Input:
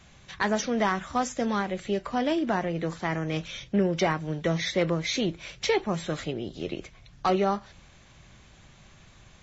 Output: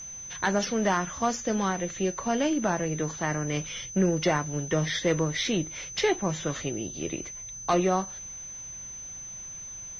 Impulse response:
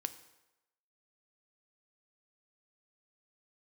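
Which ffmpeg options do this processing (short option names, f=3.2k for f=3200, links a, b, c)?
-af "aeval=exprs='val(0)+0.0126*sin(2*PI*6500*n/s)':c=same,aeval=exprs='0.211*(cos(1*acos(clip(val(0)/0.211,-1,1)))-cos(1*PI/2))+0.00211*(cos(8*acos(clip(val(0)/0.211,-1,1)))-cos(8*PI/2))':c=same,asetrate=41586,aresample=44100"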